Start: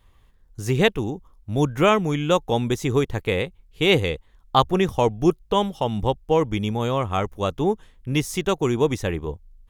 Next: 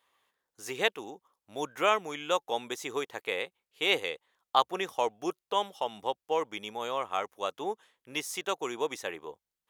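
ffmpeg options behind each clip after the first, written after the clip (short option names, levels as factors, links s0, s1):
-af "highpass=580,volume=0.531"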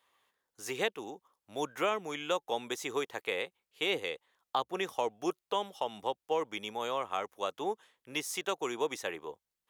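-filter_complex "[0:a]acrossover=split=430[s0][s1];[s1]acompressor=threshold=0.0316:ratio=4[s2];[s0][s2]amix=inputs=2:normalize=0"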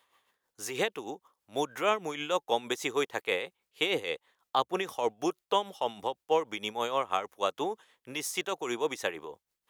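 -af "tremolo=f=6.3:d=0.6,volume=2"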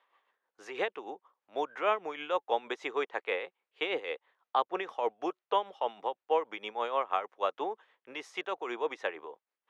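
-af "highpass=420,lowpass=2300"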